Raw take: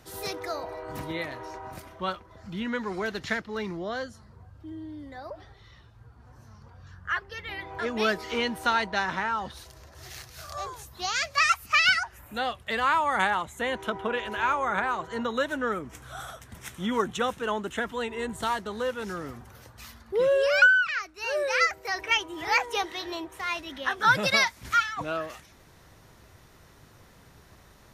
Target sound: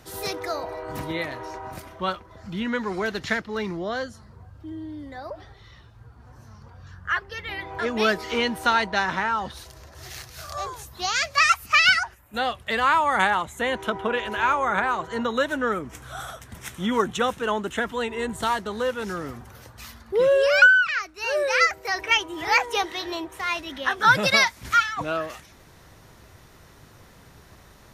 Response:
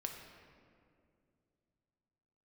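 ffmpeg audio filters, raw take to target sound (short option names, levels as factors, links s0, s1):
-filter_complex "[0:a]asettb=1/sr,asplit=3[s0][s1][s2];[s0]atrim=end=11.994[s3];[s1]atrim=start=11.99:end=12.48,asetpts=PTS-STARTPTS,afade=t=in:d=0.004:c=qsin,afade=t=out:st=0.486:d=0.004:c=qsin,agate=range=0.282:threshold=0.00891:ratio=16:detection=peak[s4];[s2]atrim=start=12.476[s5];[s3][s4]acrossfade=d=0.004:c1=hsin:c2=qsin[s6];[s6][s5]acrossfade=d=0.004:c1=qsin:c2=hsin,volume=1.58"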